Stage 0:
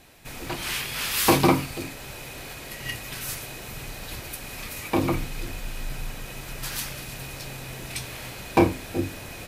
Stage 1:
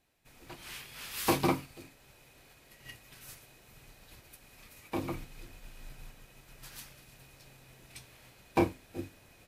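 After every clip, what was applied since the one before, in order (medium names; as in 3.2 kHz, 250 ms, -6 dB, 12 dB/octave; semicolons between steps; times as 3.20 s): upward expansion 1.5:1, over -42 dBFS; trim -8 dB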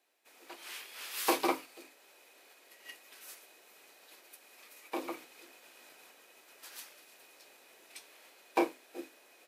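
high-pass 340 Hz 24 dB/octave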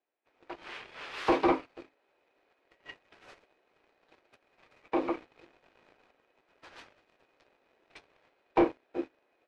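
waveshaping leveller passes 3; tape spacing loss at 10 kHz 37 dB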